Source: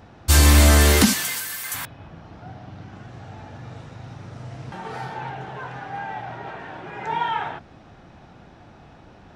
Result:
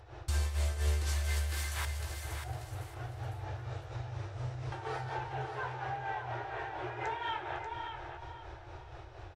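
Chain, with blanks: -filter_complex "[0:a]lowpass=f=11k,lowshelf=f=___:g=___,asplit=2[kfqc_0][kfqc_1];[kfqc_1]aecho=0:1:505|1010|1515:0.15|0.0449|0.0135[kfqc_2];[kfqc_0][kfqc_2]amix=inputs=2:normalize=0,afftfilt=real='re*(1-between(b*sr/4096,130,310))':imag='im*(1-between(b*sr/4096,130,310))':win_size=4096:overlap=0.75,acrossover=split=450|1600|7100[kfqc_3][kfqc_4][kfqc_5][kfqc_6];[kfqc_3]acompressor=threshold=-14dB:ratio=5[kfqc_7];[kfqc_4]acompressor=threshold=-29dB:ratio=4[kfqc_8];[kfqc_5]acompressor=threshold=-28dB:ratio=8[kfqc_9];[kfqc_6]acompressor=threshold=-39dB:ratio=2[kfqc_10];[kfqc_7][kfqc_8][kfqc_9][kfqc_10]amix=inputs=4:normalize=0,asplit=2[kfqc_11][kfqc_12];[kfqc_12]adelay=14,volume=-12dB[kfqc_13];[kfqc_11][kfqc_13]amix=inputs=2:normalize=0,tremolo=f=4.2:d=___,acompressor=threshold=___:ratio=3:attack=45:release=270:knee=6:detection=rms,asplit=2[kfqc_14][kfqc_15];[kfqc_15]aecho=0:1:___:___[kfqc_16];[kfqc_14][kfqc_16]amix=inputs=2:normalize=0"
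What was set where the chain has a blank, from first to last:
140, 7, 0.72, -36dB, 588, 0.422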